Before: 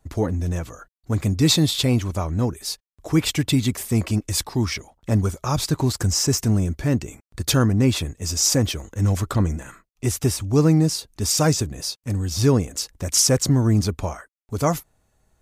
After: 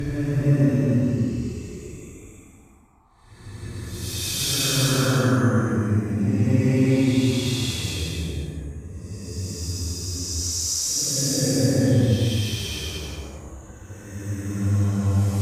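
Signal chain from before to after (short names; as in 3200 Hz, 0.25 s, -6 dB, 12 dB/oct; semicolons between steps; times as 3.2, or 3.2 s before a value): band noise 730–1200 Hz -55 dBFS; rotary speaker horn 0.75 Hz; Paulstretch 6.6×, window 0.25 s, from 6.8; added harmonics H 2 -26 dB, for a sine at -7 dBFS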